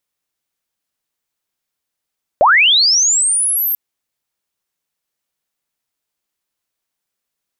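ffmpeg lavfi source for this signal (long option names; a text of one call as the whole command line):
ffmpeg -f lavfi -i "aevalsrc='pow(10,(-6-8.5*t/1.34)/20)*sin(2*PI*(530*t+12470*t*t/(2*1.34)))':duration=1.34:sample_rate=44100" out.wav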